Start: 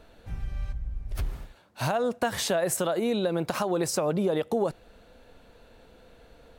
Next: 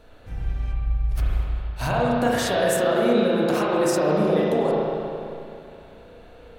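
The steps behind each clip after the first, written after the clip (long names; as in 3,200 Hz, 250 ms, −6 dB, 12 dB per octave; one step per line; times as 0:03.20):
convolution reverb RT60 2.7 s, pre-delay 33 ms, DRR −6 dB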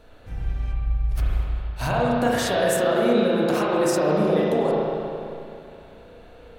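no processing that can be heard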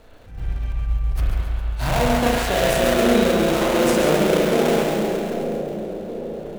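gap after every zero crossing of 0.25 ms
echo with a time of its own for lows and highs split 710 Hz, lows 781 ms, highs 138 ms, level −6 dB
level that may rise only so fast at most 120 dB per second
level +2.5 dB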